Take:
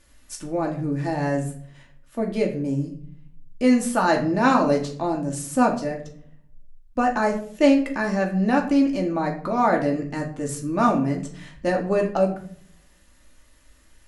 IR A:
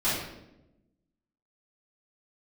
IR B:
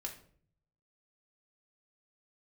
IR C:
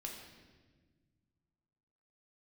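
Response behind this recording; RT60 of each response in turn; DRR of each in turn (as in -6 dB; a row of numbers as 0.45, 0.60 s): B; 0.90, 0.55, 1.4 s; -14.0, 0.5, -1.0 dB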